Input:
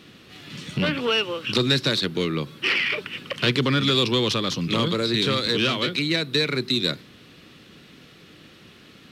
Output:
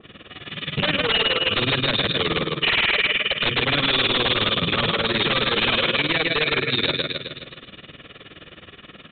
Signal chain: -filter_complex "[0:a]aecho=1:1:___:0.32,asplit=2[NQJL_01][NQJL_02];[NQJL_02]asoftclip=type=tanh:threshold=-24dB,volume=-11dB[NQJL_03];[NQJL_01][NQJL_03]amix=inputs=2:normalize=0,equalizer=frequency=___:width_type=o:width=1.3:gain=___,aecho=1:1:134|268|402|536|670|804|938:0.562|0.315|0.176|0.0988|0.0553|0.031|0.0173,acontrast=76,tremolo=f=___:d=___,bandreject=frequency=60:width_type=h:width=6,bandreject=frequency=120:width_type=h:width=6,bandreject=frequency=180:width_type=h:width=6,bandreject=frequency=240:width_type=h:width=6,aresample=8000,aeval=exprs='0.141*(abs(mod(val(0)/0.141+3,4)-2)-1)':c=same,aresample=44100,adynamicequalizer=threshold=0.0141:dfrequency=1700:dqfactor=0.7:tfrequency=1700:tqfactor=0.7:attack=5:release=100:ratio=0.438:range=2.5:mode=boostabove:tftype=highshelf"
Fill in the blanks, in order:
1.7, 160, -4, 19, 0.88